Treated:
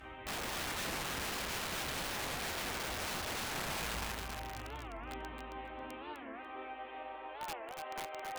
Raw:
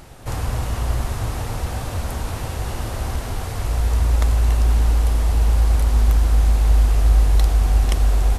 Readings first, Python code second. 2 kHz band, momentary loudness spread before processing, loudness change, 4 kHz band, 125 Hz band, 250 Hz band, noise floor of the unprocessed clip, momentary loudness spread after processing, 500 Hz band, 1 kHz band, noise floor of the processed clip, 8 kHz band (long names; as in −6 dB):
−4.5 dB, 10 LU, −19.0 dB, −5.0 dB, −31.0 dB, −14.0 dB, −28 dBFS, 9 LU, −11.5 dB, −9.0 dB, −48 dBFS, −8.5 dB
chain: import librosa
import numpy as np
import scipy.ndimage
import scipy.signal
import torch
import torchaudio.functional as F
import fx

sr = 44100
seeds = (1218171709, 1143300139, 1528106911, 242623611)

p1 = fx.delta_mod(x, sr, bps=16000, step_db=-33.5)
p2 = fx.dynamic_eq(p1, sr, hz=200.0, q=0.78, threshold_db=-36.0, ratio=4.0, max_db=-5)
p3 = fx.over_compress(p2, sr, threshold_db=-21.0, ratio=-0.5)
p4 = p2 + (p3 * librosa.db_to_amplitude(2.0))
p5 = fx.rev_schroeder(p4, sr, rt60_s=2.2, comb_ms=29, drr_db=10.0)
p6 = fx.cheby_harmonics(p5, sr, harmonics=(2, 6, 7), levels_db=(-31, -45, -42), full_scale_db=-1.0)
p7 = fx.resonator_bank(p6, sr, root=60, chord='minor', decay_s=0.56)
p8 = fx.filter_sweep_highpass(p7, sr, from_hz=63.0, to_hz=550.0, start_s=3.56, end_s=7.37, q=1.7)
p9 = (np.mod(10.0 ** (39.0 / 20.0) * p8 + 1.0, 2.0) - 1.0) / 10.0 ** (39.0 / 20.0)
p10 = fx.echo_feedback(p9, sr, ms=271, feedback_pct=15, wet_db=-5.5)
p11 = fx.record_warp(p10, sr, rpm=45.0, depth_cents=250.0)
y = p11 * librosa.db_to_amplitude(4.0)